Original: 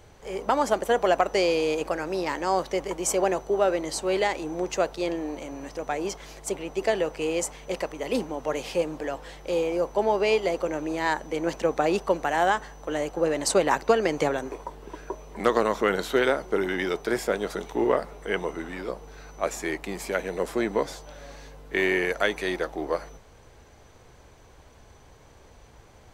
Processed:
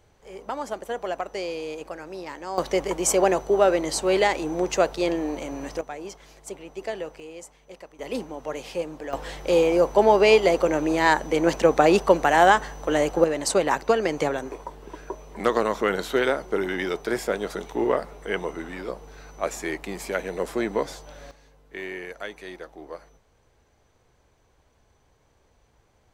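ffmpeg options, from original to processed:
-af "asetnsamples=n=441:p=0,asendcmd='2.58 volume volume 4dB;5.81 volume volume -7dB;7.2 volume volume -14dB;7.99 volume volume -3.5dB;9.13 volume volume 6.5dB;13.24 volume volume 0dB;21.31 volume volume -11dB',volume=0.398"

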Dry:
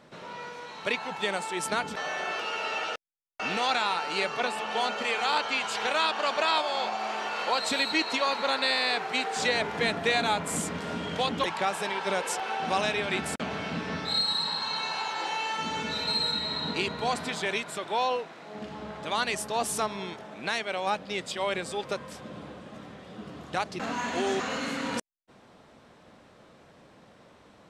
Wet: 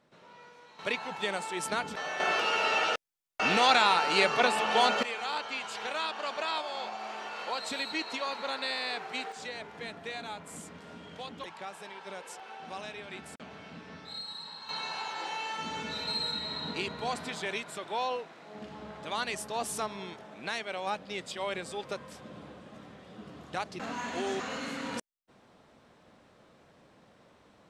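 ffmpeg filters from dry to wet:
-af "asetnsamples=n=441:p=0,asendcmd='0.79 volume volume -3dB;2.2 volume volume 4dB;5.03 volume volume -7.5dB;9.32 volume volume -14dB;14.69 volume volume -5dB',volume=0.224"

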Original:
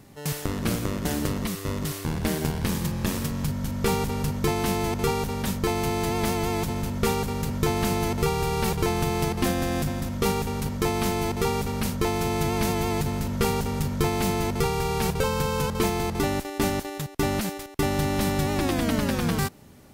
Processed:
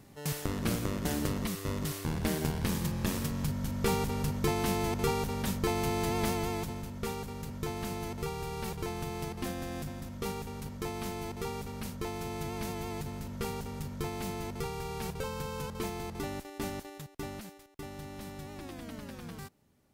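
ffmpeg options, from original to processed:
-af "volume=0.562,afade=t=out:st=6.24:d=0.63:silence=0.446684,afade=t=out:st=16.87:d=0.69:silence=0.446684"

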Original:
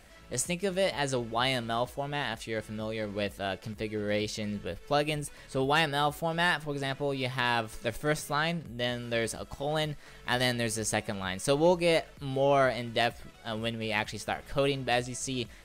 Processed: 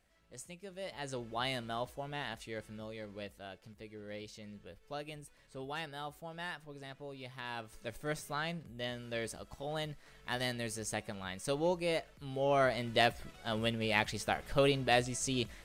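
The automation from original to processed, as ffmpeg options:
-af "volume=2.11,afade=t=in:st=0.74:d=0.62:silence=0.316228,afade=t=out:st=2.36:d=1.16:silence=0.421697,afade=t=in:st=7.42:d=0.74:silence=0.446684,afade=t=in:st=12.33:d=0.67:silence=0.421697"

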